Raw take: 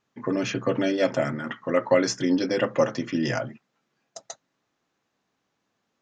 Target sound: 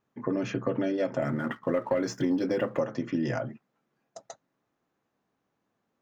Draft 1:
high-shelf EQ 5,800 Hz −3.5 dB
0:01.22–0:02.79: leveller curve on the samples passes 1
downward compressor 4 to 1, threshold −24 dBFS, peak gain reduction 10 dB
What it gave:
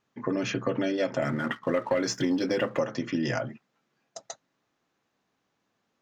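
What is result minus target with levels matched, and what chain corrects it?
4,000 Hz band +7.5 dB
high-shelf EQ 5,800 Hz −3.5 dB
0:01.22–0:02.79: leveller curve on the samples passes 1
downward compressor 4 to 1, threshold −24 dBFS, peak gain reduction 10 dB
parametric band 4,400 Hz −9 dB 2.7 octaves

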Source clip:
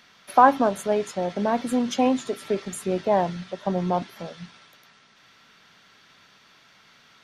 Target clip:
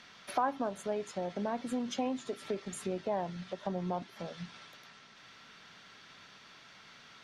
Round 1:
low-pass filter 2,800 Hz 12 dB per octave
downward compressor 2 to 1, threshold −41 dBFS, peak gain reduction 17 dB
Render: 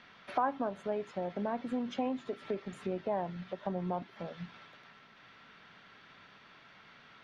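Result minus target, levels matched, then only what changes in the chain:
8,000 Hz band −15.5 dB
change: low-pass filter 8,900 Hz 12 dB per octave

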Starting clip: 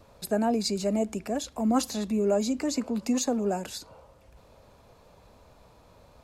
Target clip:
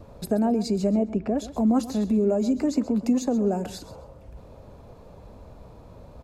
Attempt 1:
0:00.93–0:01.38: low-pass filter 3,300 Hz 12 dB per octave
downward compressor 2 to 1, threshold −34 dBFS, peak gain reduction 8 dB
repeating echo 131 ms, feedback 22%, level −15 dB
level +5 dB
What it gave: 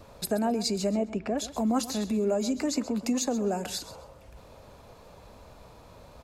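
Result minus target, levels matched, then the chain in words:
1,000 Hz band +4.0 dB
0:00.93–0:01.38: low-pass filter 3,300 Hz 12 dB per octave
downward compressor 2 to 1, threshold −34 dBFS, peak gain reduction 8 dB
tilt shelving filter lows +7 dB, about 860 Hz
repeating echo 131 ms, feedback 22%, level −15 dB
level +5 dB

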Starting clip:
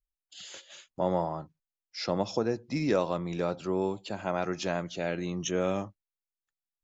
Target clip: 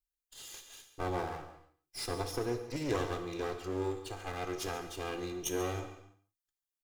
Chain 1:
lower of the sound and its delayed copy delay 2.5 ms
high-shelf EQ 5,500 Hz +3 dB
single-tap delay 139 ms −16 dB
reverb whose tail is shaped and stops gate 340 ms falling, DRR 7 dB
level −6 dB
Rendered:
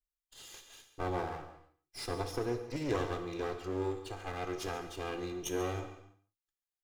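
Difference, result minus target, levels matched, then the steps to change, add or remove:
8,000 Hz band −4.0 dB
change: high-shelf EQ 5,500 Hz +9.5 dB

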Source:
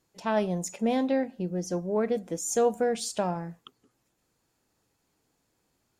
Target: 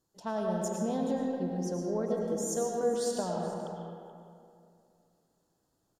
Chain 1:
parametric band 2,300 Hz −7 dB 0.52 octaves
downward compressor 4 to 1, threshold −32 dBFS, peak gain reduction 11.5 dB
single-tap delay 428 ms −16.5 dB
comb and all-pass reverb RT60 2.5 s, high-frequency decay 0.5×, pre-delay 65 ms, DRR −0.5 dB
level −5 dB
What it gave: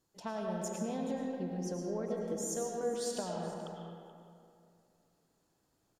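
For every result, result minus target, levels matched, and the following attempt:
downward compressor: peak gain reduction +6 dB; 2,000 Hz band +2.5 dB
parametric band 2,300 Hz −7 dB 0.52 octaves
downward compressor 4 to 1, threshold −24 dBFS, peak gain reduction 5.5 dB
single-tap delay 428 ms −16.5 dB
comb and all-pass reverb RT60 2.5 s, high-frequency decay 0.5×, pre-delay 65 ms, DRR −0.5 dB
level −5 dB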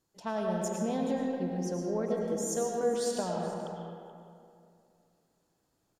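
2,000 Hz band +3.0 dB
parametric band 2,300 Hz −17 dB 0.52 octaves
downward compressor 4 to 1, threshold −24 dBFS, peak gain reduction 5.5 dB
single-tap delay 428 ms −16.5 dB
comb and all-pass reverb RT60 2.5 s, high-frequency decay 0.5×, pre-delay 65 ms, DRR −0.5 dB
level −5 dB

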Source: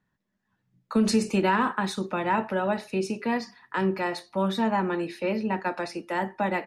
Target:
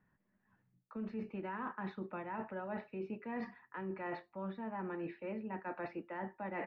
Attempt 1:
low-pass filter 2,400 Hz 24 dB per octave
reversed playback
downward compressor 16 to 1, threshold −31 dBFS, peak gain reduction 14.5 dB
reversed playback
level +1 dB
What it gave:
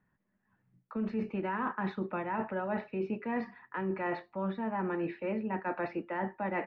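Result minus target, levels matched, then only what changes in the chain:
downward compressor: peak gain reduction −8 dB
change: downward compressor 16 to 1, threshold −39.5 dBFS, peak gain reduction 22.5 dB

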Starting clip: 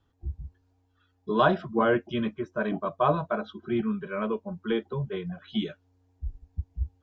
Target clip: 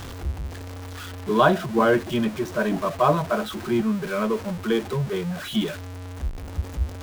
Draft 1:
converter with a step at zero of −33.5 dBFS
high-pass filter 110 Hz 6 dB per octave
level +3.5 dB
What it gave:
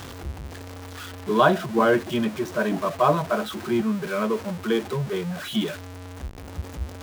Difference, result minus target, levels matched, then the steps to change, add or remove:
125 Hz band −3.0 dB
remove: high-pass filter 110 Hz 6 dB per octave

